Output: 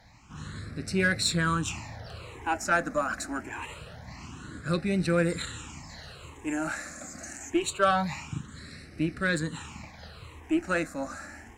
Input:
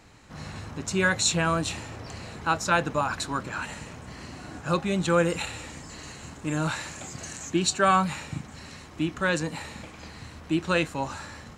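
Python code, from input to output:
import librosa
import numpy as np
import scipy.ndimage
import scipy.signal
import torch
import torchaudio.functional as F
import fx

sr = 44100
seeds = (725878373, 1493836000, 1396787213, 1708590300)

y = fx.phaser_stages(x, sr, stages=8, low_hz=120.0, high_hz=1000.0, hz=0.25, feedback_pct=5)
y = fx.cheby_harmonics(y, sr, harmonics=(6, 8), levels_db=(-31, -27), full_scale_db=-9.0)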